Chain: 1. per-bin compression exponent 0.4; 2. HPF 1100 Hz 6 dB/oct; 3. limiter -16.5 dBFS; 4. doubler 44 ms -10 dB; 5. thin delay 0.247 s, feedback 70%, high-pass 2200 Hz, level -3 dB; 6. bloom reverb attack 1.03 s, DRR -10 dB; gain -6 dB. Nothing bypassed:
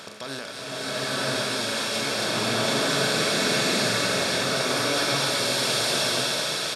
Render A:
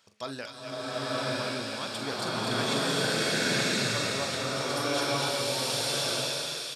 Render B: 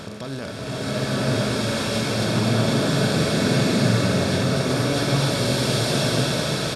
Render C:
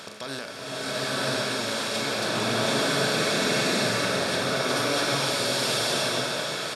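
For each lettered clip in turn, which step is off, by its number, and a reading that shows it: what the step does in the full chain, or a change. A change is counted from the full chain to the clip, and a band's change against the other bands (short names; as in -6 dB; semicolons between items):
1, 125 Hz band +2.5 dB; 2, 125 Hz band +14.5 dB; 5, loudness change -1.5 LU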